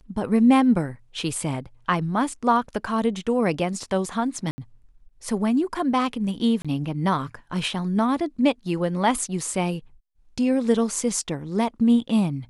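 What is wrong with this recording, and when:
0:04.51–0:04.58: drop-out 70 ms
0:06.62–0:06.65: drop-out 26 ms

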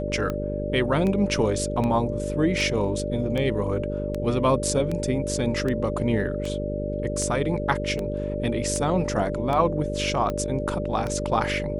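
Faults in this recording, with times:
mains buzz 50 Hz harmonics 10 −30 dBFS
scratch tick 78 rpm −16 dBFS
whistle 590 Hz −30 dBFS

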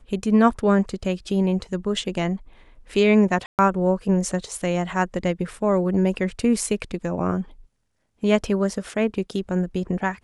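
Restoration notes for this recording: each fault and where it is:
0:03.46–0:03.59: drop-out 128 ms

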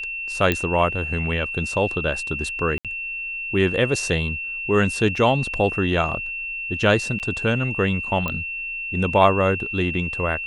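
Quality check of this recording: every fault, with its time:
whistle 2,700 Hz −27 dBFS
0:00.52: click −7 dBFS
0:02.78–0:02.85: drop-out 67 ms
0:05.16: drop-out 3.7 ms
0:07.19–0:07.20: drop-out 8.8 ms
0:08.28: click −12 dBFS

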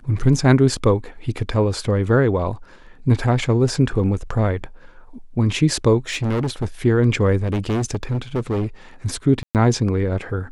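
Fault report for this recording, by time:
0:06.10–0:06.66: clipping −18 dBFS
0:07.42–0:08.67: clipping −18 dBFS
0:09.43–0:09.55: drop-out 118 ms

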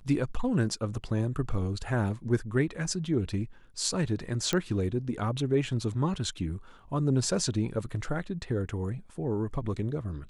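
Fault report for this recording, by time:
0:04.53: click −13 dBFS

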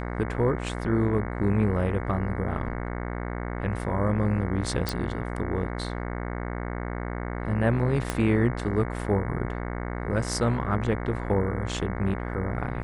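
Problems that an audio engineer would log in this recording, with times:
mains buzz 60 Hz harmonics 37 −32 dBFS
0:04.89: click
0:08.10: click −12 dBFS

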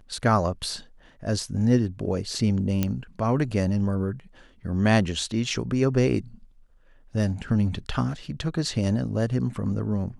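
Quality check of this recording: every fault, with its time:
0:02.83: click −10 dBFS

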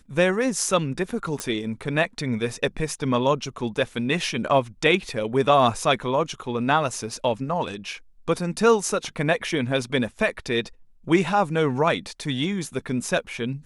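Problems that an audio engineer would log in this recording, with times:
0:01.40: click

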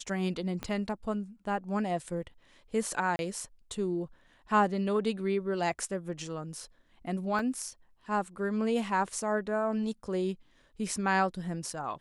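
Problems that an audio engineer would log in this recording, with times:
0:00.63: click −21 dBFS
0:03.16–0:03.19: drop-out 31 ms
0:07.39: drop-out 2.1 ms

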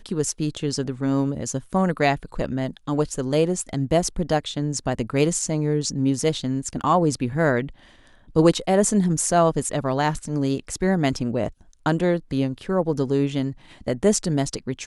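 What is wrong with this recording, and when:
0:06.81: drop-out 3.7 ms

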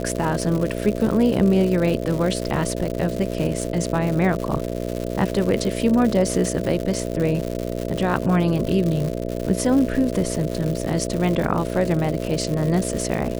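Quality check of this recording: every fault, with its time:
mains buzz 60 Hz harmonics 11 −27 dBFS
surface crackle 190 per second −25 dBFS

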